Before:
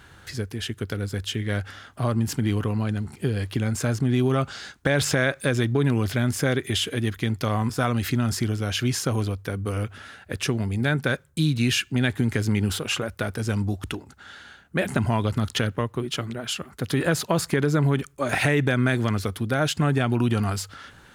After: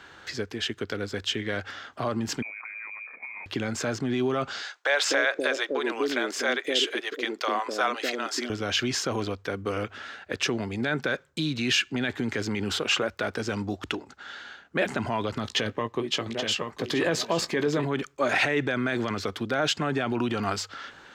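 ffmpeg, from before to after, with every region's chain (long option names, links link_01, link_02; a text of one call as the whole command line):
ffmpeg -i in.wav -filter_complex "[0:a]asettb=1/sr,asplit=3[link_01][link_02][link_03];[link_01]atrim=end=2.424[link_04];[link_02]atrim=start=2.42:end=3.46,asetpts=PTS-STARTPTS,afade=type=in:duration=0.004:curve=qsin,afade=type=out:start_time=1.036:duration=0.004:curve=qsin,highpass=200,acompressor=threshold=-37dB:ratio=16:attack=3.2:release=140:knee=1:detection=peak,lowpass=frequency=2200:width_type=q:width=0.5098,lowpass=frequency=2200:width_type=q:width=0.6013,lowpass=frequency=2200:width_type=q:width=0.9,lowpass=frequency=2200:width_type=q:width=2.563,afreqshift=-2600[link_05];[link_03]atrim=start=3.456[link_06];[link_04][link_05]acrossfade=duration=0.004:curve1=hsin:curve2=qsin[link_07];[link_07][link_06]acrossfade=duration=0.004:curve1=qsin:curve2=hsin,asettb=1/sr,asplit=3[link_08][link_09][link_10];[link_08]atrim=end=4.624[link_11];[link_09]atrim=start=4.62:end=8.5,asetpts=PTS-STARTPTS,afade=type=in:duration=0.004:curve=qsin,afade=type=out:start_time=3.876:duration=0.004:curve=qsin,highpass=frequency=310:width=0.5412,highpass=frequency=310:width=1.3066,acrossover=split=500[link_12][link_13];[link_12]adelay=250[link_14];[link_14][link_13]amix=inputs=2:normalize=0,atrim=end_sample=171108[link_15];[link_10]atrim=start=8.496[link_16];[link_11][link_15]acrossfade=duration=0.004:curve1=hsin:curve2=qsin[link_17];[link_17][link_16]acrossfade=duration=0.004:curve1=qsin:curve2=hsin,asettb=1/sr,asplit=3[link_18][link_19][link_20];[link_18]atrim=end=15.434[link_21];[link_19]atrim=start=15.43:end=17.85,asetpts=PTS-STARTPTS,afade=type=in:duration=0.004:curve=qsin,afade=type=out:start_time=2.416:duration=0.004:curve=qsin,bandreject=frequency=1400:width=5.4,asplit=2[link_22][link_23];[link_23]adelay=18,volume=-12dB[link_24];[link_22][link_24]amix=inputs=2:normalize=0,atrim=end_sample=106722,aecho=1:1:827:0.335,atrim=end_sample=106722[link_25];[link_20]atrim=start=17.846[link_26];[link_21][link_25]acrossfade=duration=0.004:curve1=hsin:curve2=qsin[link_27];[link_27][link_26]acrossfade=duration=0.004:curve1=qsin:curve2=hsin,equalizer=frequency=9700:width_type=o:width=0.27:gain=-10.5,alimiter=limit=-16dB:level=0:latency=1:release=14,acrossover=split=250 7600:gain=0.178 1 0.158[link_28][link_29][link_30];[link_28][link_29][link_30]amix=inputs=3:normalize=0,volume=3dB" out.wav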